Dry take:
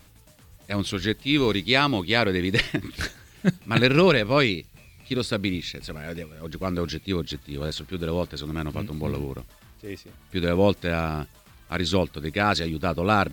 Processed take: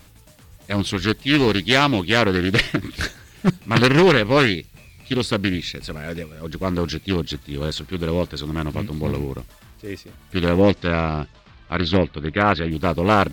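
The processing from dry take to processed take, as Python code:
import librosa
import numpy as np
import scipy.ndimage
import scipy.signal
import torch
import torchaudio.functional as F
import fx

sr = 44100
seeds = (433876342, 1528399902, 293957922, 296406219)

y = fx.lowpass(x, sr, hz=fx.line((10.61, 6800.0), (12.7, 3100.0)), slope=24, at=(10.61, 12.7), fade=0.02)
y = np.clip(10.0 ** (11.5 / 20.0) * y, -1.0, 1.0) / 10.0 ** (11.5 / 20.0)
y = fx.doppler_dist(y, sr, depth_ms=0.52)
y = y * librosa.db_to_amplitude(4.5)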